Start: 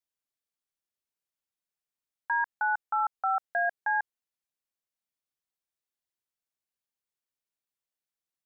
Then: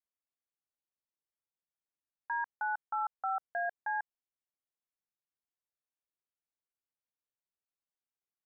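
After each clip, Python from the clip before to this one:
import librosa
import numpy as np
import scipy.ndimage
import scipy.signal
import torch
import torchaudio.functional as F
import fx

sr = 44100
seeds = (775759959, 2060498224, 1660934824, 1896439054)

y = scipy.signal.sosfilt(scipy.signal.butter(2, 1700.0, 'lowpass', fs=sr, output='sos'), x)
y = y * 10.0 ** (-5.5 / 20.0)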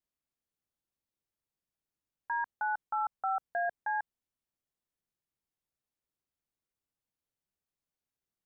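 y = fx.low_shelf(x, sr, hz=400.0, db=11.5)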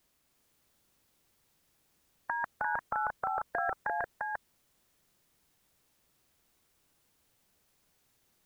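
y = x + 10.0 ** (-4.5 / 20.0) * np.pad(x, (int(347 * sr / 1000.0), 0))[:len(x)]
y = fx.spectral_comp(y, sr, ratio=2.0)
y = y * 10.0 ** (3.5 / 20.0)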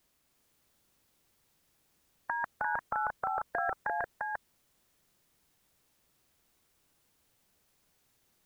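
y = x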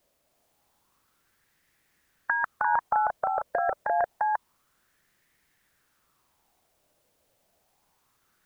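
y = fx.bell_lfo(x, sr, hz=0.28, low_hz=570.0, high_hz=1900.0, db=13)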